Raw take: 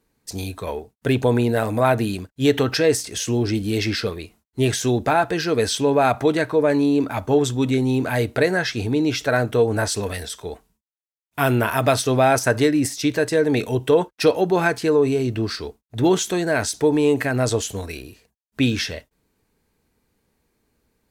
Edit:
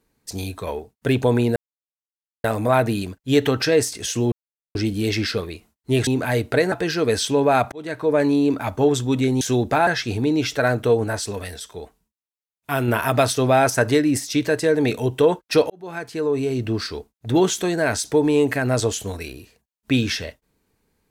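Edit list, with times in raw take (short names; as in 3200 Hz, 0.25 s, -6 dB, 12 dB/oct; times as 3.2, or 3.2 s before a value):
1.56 insert silence 0.88 s
3.44 insert silence 0.43 s
4.76–5.22 swap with 7.91–8.56
6.22–6.66 fade in
9.73–11.57 gain -3.5 dB
14.39–15.4 fade in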